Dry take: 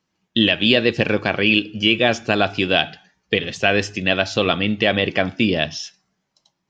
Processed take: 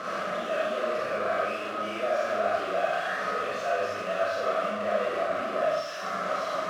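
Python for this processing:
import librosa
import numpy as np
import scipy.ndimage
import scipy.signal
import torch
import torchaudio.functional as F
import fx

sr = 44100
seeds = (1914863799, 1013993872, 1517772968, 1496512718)

y = np.sign(x) * np.sqrt(np.mean(np.square(x)))
y = fx.double_bandpass(y, sr, hz=890.0, octaves=0.92)
y = fx.rev_schroeder(y, sr, rt60_s=0.75, comb_ms=30, drr_db=-5.0)
y = F.gain(torch.from_numpy(y), -3.0).numpy()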